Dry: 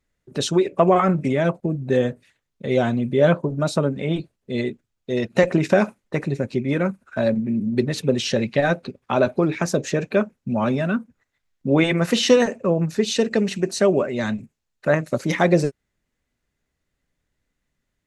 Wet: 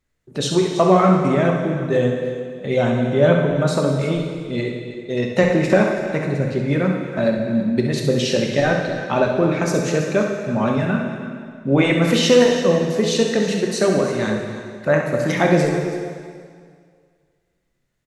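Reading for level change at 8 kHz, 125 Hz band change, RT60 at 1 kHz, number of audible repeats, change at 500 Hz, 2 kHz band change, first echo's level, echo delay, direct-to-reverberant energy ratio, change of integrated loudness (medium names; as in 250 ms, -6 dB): +2.5 dB, +3.5 dB, 2.0 s, 2, +2.5 dB, +3.0 dB, -8.0 dB, 65 ms, 0.5 dB, +2.5 dB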